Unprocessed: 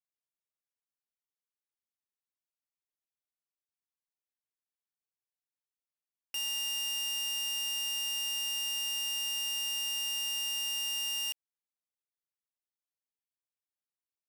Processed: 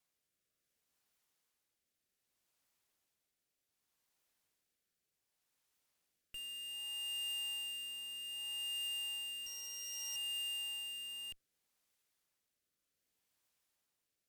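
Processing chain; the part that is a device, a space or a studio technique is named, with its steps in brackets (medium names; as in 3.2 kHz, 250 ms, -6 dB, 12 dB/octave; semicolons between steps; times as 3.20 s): 9.46–10.16 s: comb 2 ms, depth 68%; overdriven rotary cabinet (valve stage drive 55 dB, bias 0.35; rotary cabinet horn 0.65 Hz); trim +15.5 dB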